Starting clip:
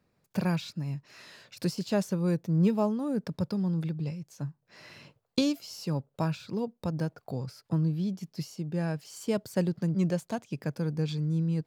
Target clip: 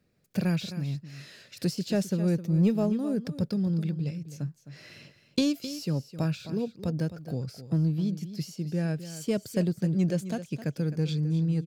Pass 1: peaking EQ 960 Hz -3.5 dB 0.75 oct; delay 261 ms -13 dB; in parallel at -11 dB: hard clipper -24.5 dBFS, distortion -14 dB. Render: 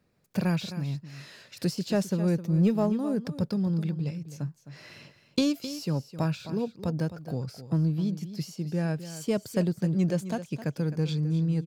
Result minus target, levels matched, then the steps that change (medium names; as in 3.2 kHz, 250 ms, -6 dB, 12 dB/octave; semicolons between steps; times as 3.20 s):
1 kHz band +5.0 dB
change: peaking EQ 960 Hz -11.5 dB 0.75 oct